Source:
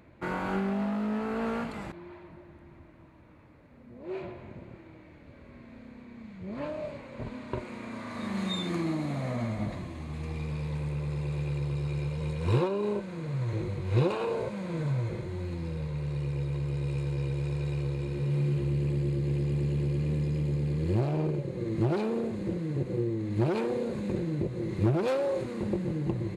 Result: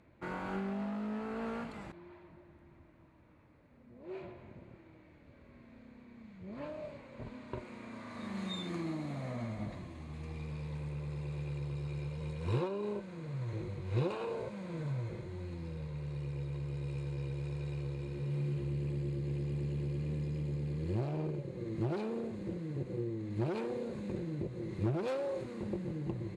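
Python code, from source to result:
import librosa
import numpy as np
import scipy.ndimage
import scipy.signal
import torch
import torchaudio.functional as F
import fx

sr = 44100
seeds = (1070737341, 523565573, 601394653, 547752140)

y = scipy.signal.sosfilt(scipy.signal.butter(2, 11000.0, 'lowpass', fs=sr, output='sos'), x)
y = y * librosa.db_to_amplitude(-7.5)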